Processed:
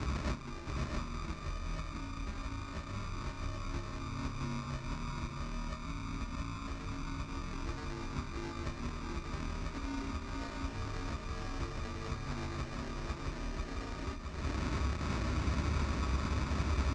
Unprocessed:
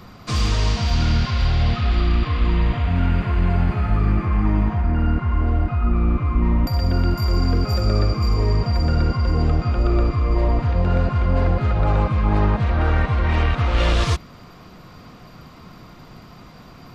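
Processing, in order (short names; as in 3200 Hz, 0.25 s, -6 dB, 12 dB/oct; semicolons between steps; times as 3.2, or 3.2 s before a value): tilt -3.5 dB/oct; compressor 6:1, threshold -27 dBFS, peak gain reduction 25.5 dB; limiter -28 dBFS, peak gain reduction 10.5 dB; frequency shift -75 Hz; sample-rate reducer 1200 Hz, jitter 0%; speaker cabinet 100–6400 Hz, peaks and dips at 120 Hz -10 dB, 180 Hz -7 dB, 490 Hz -9 dB, 750 Hz -6 dB, 3200 Hz -6 dB; doubler 29 ms -11.5 dB; echo 0.668 s -3.5 dB; gain +8.5 dB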